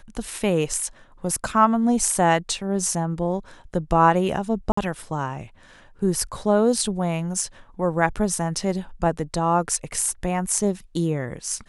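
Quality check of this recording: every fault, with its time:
0:04.72–0:04.77: drop-out 54 ms

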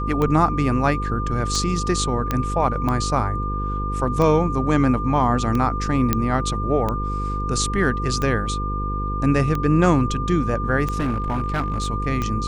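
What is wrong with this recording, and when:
mains buzz 50 Hz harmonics 10 −26 dBFS
scratch tick 45 rpm −12 dBFS
whistle 1,200 Hz −27 dBFS
0:02.31: click −8 dBFS
0:06.13: click −4 dBFS
0:10.92–0:11.90: clipping −18 dBFS

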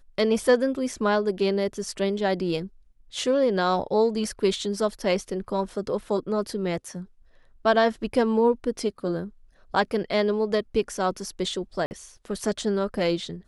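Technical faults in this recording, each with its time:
0:11.86–0:11.91: drop-out 49 ms

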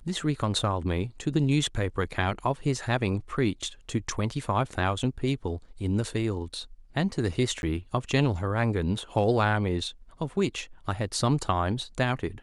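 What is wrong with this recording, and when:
0:07.62–0:07.63: drop-out 11 ms

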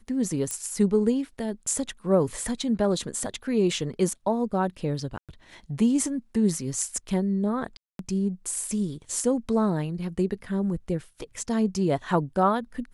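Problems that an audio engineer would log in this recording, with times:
0:00.51: click −16 dBFS
0:05.18–0:05.29: drop-out 107 ms
0:07.77–0:07.99: drop-out 222 ms

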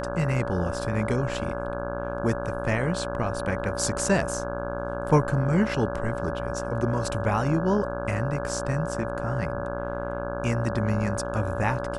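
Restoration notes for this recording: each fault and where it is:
mains buzz 60 Hz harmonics 28 −33 dBFS
whistle 570 Hz −32 dBFS

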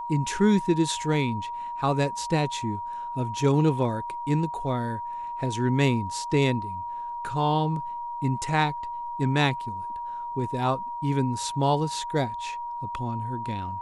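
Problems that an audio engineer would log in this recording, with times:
whistle 950 Hz −31 dBFS

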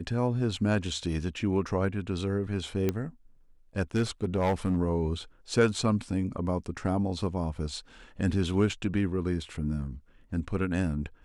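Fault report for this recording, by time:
0:02.89: click −14 dBFS
0:03.95–0:04.78: clipping −21 dBFS

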